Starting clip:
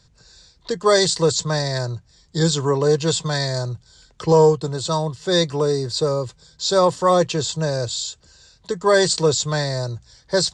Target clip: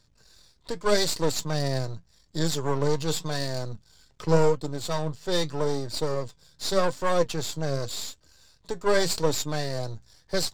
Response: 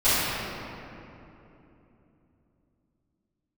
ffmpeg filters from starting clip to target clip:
-af "aeval=exprs='if(lt(val(0),0),0.251*val(0),val(0))':c=same,flanger=delay=3.2:depth=4.3:regen=71:speed=0.85:shape=sinusoidal"

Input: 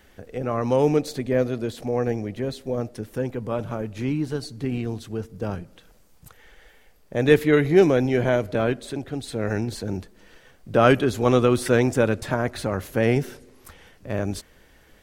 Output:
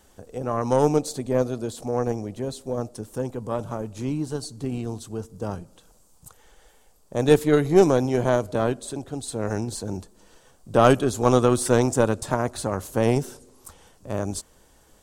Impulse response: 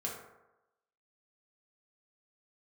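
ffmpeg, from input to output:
-af "equalizer=f=1k:t=o:w=1:g=6,equalizer=f=2k:t=o:w=1:g=-10,equalizer=f=8k:t=o:w=1:g=11,aeval=exprs='0.841*(cos(1*acos(clip(val(0)/0.841,-1,1)))-cos(1*PI/2))+0.15*(cos(2*acos(clip(val(0)/0.841,-1,1)))-cos(2*PI/2))+0.0531*(cos(5*acos(clip(val(0)/0.841,-1,1)))-cos(5*PI/2))+0.0531*(cos(7*acos(clip(val(0)/0.841,-1,1)))-cos(7*PI/2))':c=same,volume=-1.5dB"

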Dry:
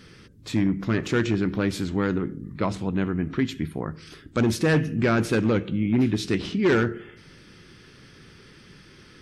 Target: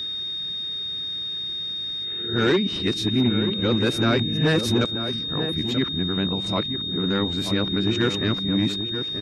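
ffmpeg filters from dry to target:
-filter_complex "[0:a]areverse,asplit=2[a][b];[b]adelay=932.9,volume=-8dB,highshelf=f=4k:g=-21[c];[a][c]amix=inputs=2:normalize=0,aeval=exprs='val(0)+0.0447*sin(2*PI*3700*n/s)':c=same"

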